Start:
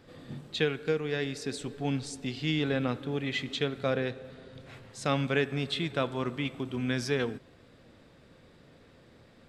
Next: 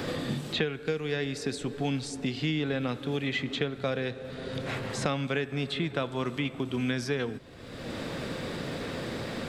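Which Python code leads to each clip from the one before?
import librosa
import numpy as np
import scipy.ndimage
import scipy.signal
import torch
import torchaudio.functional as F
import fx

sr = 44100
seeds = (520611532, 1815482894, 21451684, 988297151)

y = fx.band_squash(x, sr, depth_pct=100)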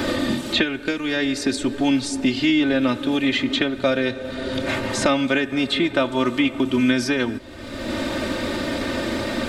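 y = x + 0.81 * np.pad(x, (int(3.3 * sr / 1000.0), 0))[:len(x)]
y = y * 10.0 ** (8.5 / 20.0)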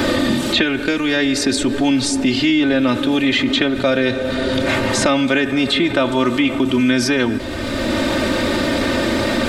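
y = fx.env_flatten(x, sr, amount_pct=50)
y = y * 10.0 ** (2.0 / 20.0)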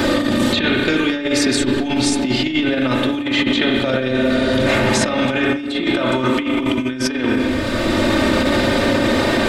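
y = fx.rev_spring(x, sr, rt60_s=2.1, pass_ms=(31, 38), chirp_ms=30, drr_db=1.0)
y = fx.over_compress(y, sr, threshold_db=-15.0, ratio=-0.5)
y = y * 10.0 ** (-1.5 / 20.0)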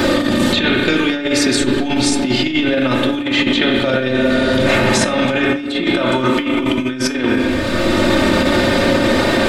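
y = fx.comb_fb(x, sr, f0_hz=180.0, decay_s=0.29, harmonics='all', damping=0.0, mix_pct=60)
y = y * 10.0 ** (8.5 / 20.0)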